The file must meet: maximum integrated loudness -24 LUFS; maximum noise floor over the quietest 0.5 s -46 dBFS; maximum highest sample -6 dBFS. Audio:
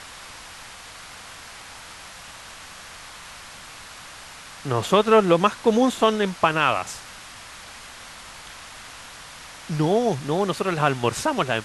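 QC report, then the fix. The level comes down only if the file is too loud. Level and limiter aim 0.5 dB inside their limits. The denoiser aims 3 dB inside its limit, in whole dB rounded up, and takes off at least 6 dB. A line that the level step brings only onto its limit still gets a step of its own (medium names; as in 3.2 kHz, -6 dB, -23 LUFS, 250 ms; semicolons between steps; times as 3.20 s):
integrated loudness -21.5 LUFS: fail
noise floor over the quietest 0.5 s -42 dBFS: fail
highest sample -4.0 dBFS: fail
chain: noise reduction 6 dB, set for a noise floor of -42 dBFS; trim -3 dB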